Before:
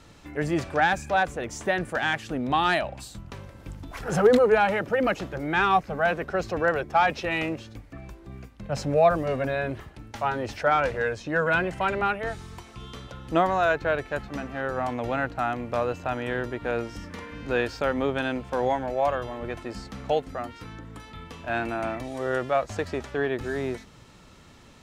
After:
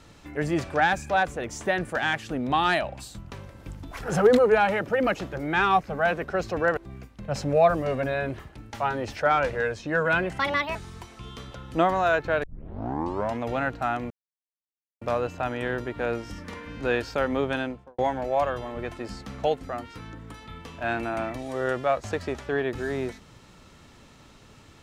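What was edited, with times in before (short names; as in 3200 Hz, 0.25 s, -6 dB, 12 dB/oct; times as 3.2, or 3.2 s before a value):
6.77–8.18 cut
11.8–12.32 speed 143%
14 tape start 0.97 s
15.67 insert silence 0.91 s
18.19–18.64 studio fade out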